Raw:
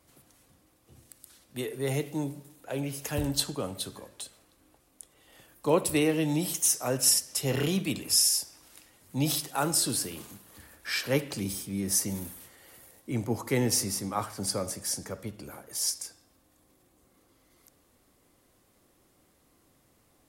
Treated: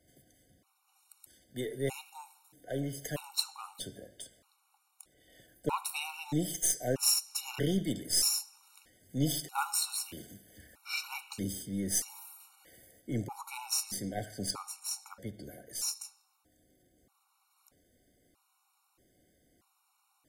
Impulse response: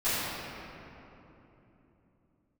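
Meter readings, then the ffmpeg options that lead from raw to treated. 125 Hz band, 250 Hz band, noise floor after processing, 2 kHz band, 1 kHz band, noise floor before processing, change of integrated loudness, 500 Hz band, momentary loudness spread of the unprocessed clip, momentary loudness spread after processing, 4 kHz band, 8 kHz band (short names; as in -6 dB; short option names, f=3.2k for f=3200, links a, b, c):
-6.0 dB, -6.0 dB, -75 dBFS, -5.5 dB, -4.0 dB, -66 dBFS, -5.0 dB, -8.0 dB, 18 LU, 20 LU, -4.5 dB, -5.0 dB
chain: -af "aeval=exprs='0.355*(cos(1*acos(clip(val(0)/0.355,-1,1)))-cos(1*PI/2))+0.0282*(cos(3*acos(clip(val(0)/0.355,-1,1)))-cos(3*PI/2))+0.0141*(cos(4*acos(clip(val(0)/0.355,-1,1)))-cos(4*PI/2))+0.00794*(cos(8*acos(clip(val(0)/0.355,-1,1)))-cos(8*PI/2))':c=same,afftfilt=real='re*gt(sin(2*PI*0.79*pts/sr)*(1-2*mod(floor(b*sr/1024/740),2)),0)':imag='im*gt(sin(2*PI*0.79*pts/sr)*(1-2*mod(floor(b*sr/1024/740),2)),0)':win_size=1024:overlap=0.75"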